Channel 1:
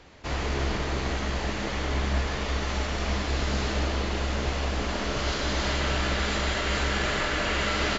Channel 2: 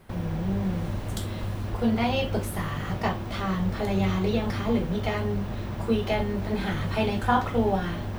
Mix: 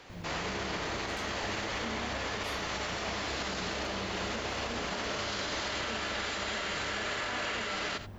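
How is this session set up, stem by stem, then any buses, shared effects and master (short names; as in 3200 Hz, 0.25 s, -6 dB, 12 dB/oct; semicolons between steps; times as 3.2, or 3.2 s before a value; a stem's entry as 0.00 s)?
+2.0 dB, 0.00 s, no send, echo send -19.5 dB, HPF 450 Hz 6 dB/oct
-13.5 dB, 0.00 s, no send, no echo send, dry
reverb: off
echo: echo 85 ms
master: limiter -26 dBFS, peak gain reduction 12 dB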